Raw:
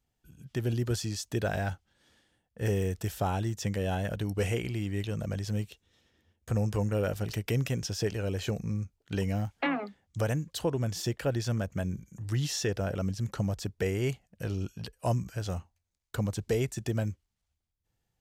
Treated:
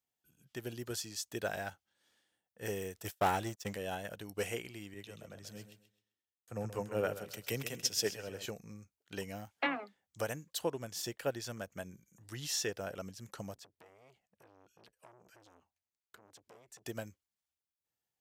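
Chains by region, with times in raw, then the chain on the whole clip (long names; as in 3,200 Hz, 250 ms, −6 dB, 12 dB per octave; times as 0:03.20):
0:03.04–0:03.77: downward expander −30 dBFS + leveller curve on the samples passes 2
0:04.94–0:08.46: repeating echo 131 ms, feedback 38%, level −8 dB + multiband upward and downward expander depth 70%
0:13.55–0:16.86: high-shelf EQ 6,500 Hz −9 dB + downward compressor 8 to 1, threshold −39 dBFS + saturating transformer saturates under 1,100 Hz
whole clip: high-pass filter 490 Hz 6 dB per octave; high-shelf EQ 11,000 Hz +9 dB; expander for the loud parts 1.5 to 1, over −43 dBFS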